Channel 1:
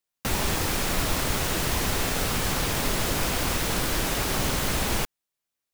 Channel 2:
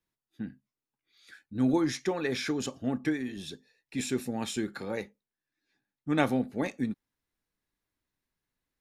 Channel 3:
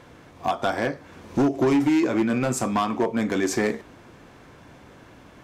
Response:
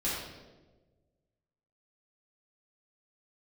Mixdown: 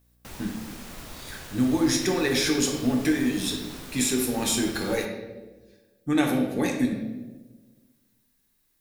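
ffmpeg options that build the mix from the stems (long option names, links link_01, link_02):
-filter_complex "[0:a]aeval=exprs='val(0)+0.00501*(sin(2*PI*60*n/s)+sin(2*PI*2*60*n/s)/2+sin(2*PI*3*60*n/s)/3+sin(2*PI*4*60*n/s)/4+sin(2*PI*5*60*n/s)/5)':channel_layout=same,acrusher=bits=3:mode=log:mix=0:aa=0.000001,volume=-16dB[link_01];[1:a]aemphasis=mode=production:type=75kf,acompressor=threshold=-28dB:ratio=5,volume=1.5dB,asplit=2[link_02][link_03];[link_03]volume=-4dB[link_04];[3:a]atrim=start_sample=2205[link_05];[link_04][link_05]afir=irnorm=-1:irlink=0[link_06];[link_01][link_02][link_06]amix=inputs=3:normalize=0"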